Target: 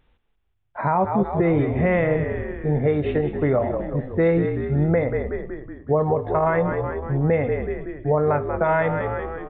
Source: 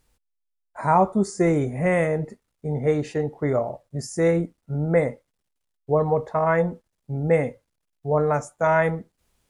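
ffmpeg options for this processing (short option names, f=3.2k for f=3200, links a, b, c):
-filter_complex "[0:a]aresample=8000,aresample=44100,asplit=8[a][b][c][d][e][f][g][h];[b]adelay=186,afreqshift=-49,volume=-9.5dB[i];[c]adelay=372,afreqshift=-98,volume=-14.2dB[j];[d]adelay=558,afreqshift=-147,volume=-19dB[k];[e]adelay=744,afreqshift=-196,volume=-23.7dB[l];[f]adelay=930,afreqshift=-245,volume=-28.4dB[m];[g]adelay=1116,afreqshift=-294,volume=-33.2dB[n];[h]adelay=1302,afreqshift=-343,volume=-37.9dB[o];[a][i][j][k][l][m][n][o]amix=inputs=8:normalize=0,alimiter=limit=-16dB:level=0:latency=1:release=238,volume=5dB"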